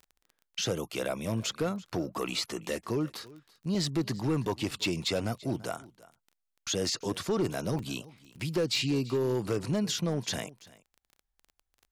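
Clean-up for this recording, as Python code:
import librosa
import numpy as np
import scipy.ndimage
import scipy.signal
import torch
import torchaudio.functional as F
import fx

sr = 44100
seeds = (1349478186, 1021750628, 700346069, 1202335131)

y = fx.fix_declip(x, sr, threshold_db=-22.5)
y = fx.fix_declick_ar(y, sr, threshold=6.5)
y = fx.fix_interpolate(y, sr, at_s=(2.05, 3.27, 4.71, 7.79, 8.25), length_ms=2.2)
y = fx.fix_echo_inverse(y, sr, delay_ms=337, level_db=-21.0)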